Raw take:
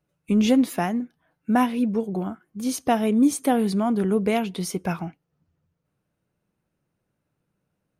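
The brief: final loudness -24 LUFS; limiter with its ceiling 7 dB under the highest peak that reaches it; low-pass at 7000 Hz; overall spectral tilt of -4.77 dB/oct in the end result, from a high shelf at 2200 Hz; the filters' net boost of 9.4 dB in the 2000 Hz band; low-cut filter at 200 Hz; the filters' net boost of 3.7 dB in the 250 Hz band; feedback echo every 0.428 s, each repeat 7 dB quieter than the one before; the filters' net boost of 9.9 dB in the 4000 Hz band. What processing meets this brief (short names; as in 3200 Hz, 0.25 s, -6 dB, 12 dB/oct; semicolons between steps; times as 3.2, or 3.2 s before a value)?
HPF 200 Hz; LPF 7000 Hz; bell 250 Hz +6 dB; bell 2000 Hz +7.5 dB; high shelf 2200 Hz +4.5 dB; bell 4000 Hz +6.5 dB; limiter -10 dBFS; feedback echo 0.428 s, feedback 45%, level -7 dB; gain -3 dB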